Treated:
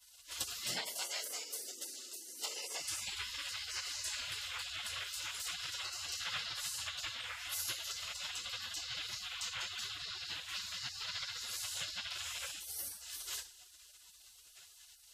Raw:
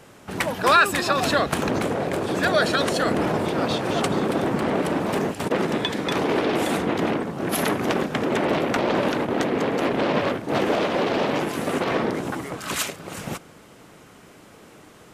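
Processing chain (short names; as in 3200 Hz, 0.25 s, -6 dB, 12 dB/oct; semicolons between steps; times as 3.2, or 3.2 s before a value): 0.65–2.81 HPF 960 Hz 24 dB/oct; reverb RT60 0.50 s, pre-delay 3 ms, DRR -15 dB; dynamic EQ 3200 Hz, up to +5 dB, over -31 dBFS, Q 1.9; compressor 6:1, threshold -12 dBFS, peak gain reduction 12.5 dB; spectral gate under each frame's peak -25 dB weak; gain -7 dB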